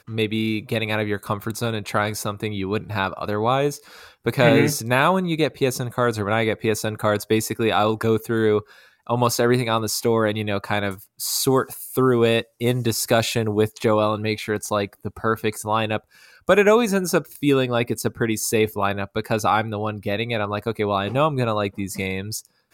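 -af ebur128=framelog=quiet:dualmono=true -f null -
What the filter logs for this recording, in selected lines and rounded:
Integrated loudness:
  I:         -18.9 LUFS
  Threshold: -29.0 LUFS
Loudness range:
  LRA:         3.0 LU
  Threshold: -38.8 LUFS
  LRA low:   -20.6 LUFS
  LRA high:  -17.6 LUFS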